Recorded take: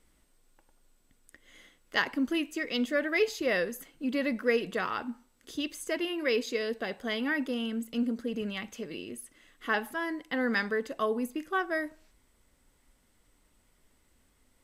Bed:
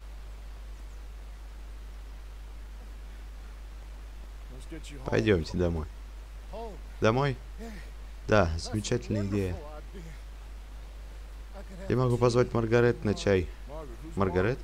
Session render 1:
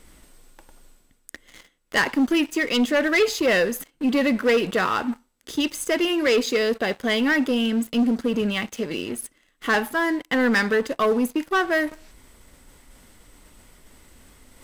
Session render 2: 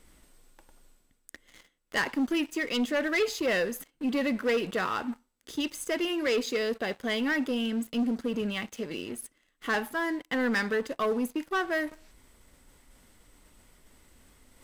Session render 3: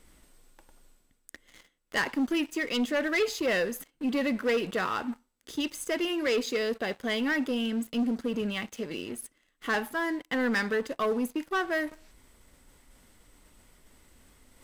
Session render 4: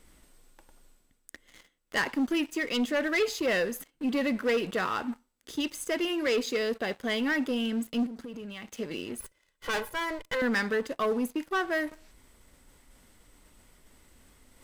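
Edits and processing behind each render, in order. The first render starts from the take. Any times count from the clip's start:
leveller curve on the samples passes 3; reversed playback; upward compression, threshold −31 dBFS; reversed playback
level −7.5 dB
no processing that can be heard
0:08.06–0:08.68: downward compressor 12 to 1, threshold −37 dBFS; 0:09.20–0:10.42: lower of the sound and its delayed copy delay 2 ms

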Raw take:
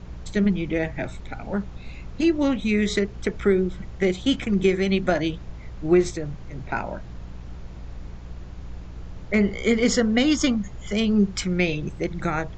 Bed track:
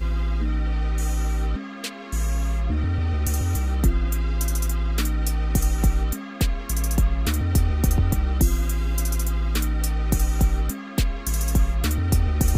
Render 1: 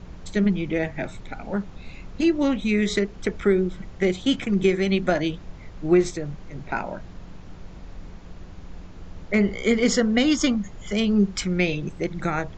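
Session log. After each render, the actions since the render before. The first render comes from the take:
hum removal 60 Hz, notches 2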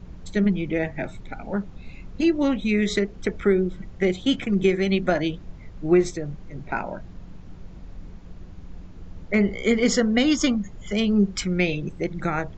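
broadband denoise 6 dB, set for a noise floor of −42 dBFS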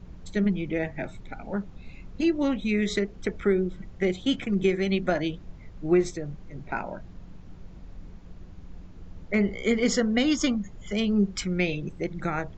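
level −3.5 dB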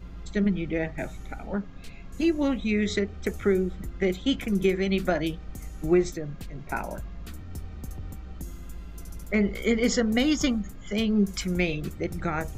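mix in bed track −19 dB

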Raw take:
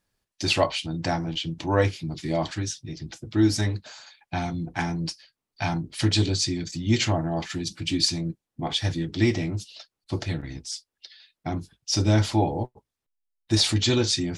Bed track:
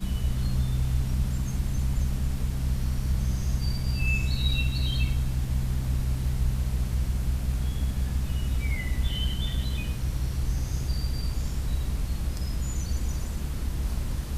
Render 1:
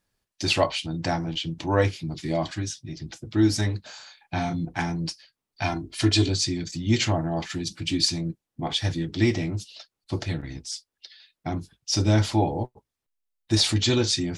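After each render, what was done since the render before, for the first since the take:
0:02.34–0:02.96: notch comb filter 450 Hz
0:03.81–0:04.65: double-tracking delay 30 ms −5 dB
0:05.64–0:06.28: comb filter 2.9 ms, depth 59%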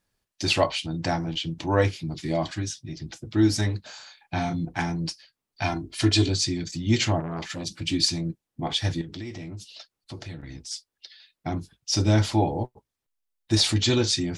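0:07.20–0:07.81: saturating transformer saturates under 860 Hz
0:09.01–0:10.71: downward compressor 4 to 1, threshold −35 dBFS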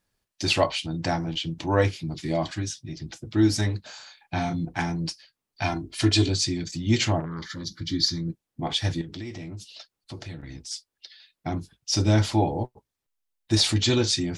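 0:07.25–0:08.28: phaser with its sweep stopped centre 2,600 Hz, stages 6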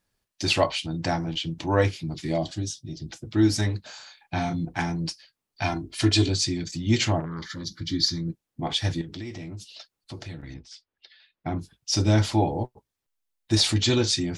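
0:02.38–0:03.10: flat-topped bell 1,500 Hz −12 dB
0:10.54–0:11.59: low-pass filter 2,900 Hz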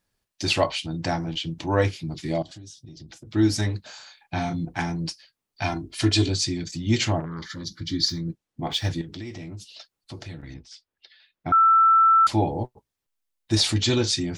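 0:02.42–0:03.33: downward compressor 10 to 1, threshold −39 dBFS
0:08.09–0:08.91: running median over 3 samples
0:11.52–0:12.27: beep over 1,330 Hz −13 dBFS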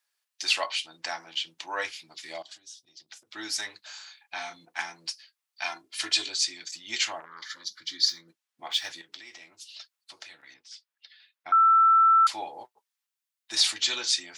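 high-pass filter 1,200 Hz 12 dB per octave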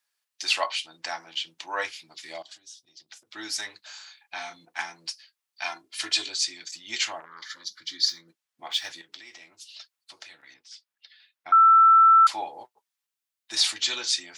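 dynamic equaliser 920 Hz, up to +5 dB, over −33 dBFS, Q 0.88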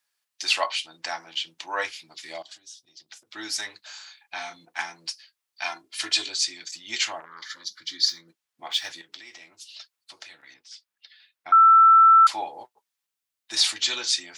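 level +1.5 dB

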